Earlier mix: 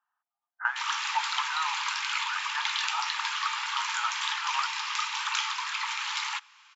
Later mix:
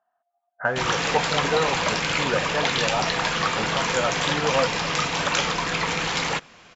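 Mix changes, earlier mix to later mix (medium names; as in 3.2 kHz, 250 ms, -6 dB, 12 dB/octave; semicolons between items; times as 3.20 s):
background +4.5 dB; master: remove rippled Chebyshev high-pass 850 Hz, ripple 3 dB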